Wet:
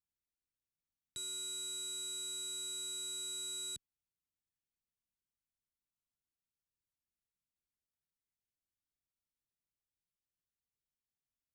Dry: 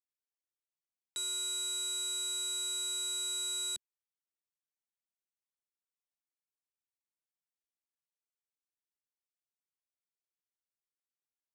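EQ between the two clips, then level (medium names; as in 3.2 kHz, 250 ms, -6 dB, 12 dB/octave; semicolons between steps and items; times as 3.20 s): tilt shelf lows +7.5 dB; amplifier tone stack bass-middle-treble 6-0-2; +16.0 dB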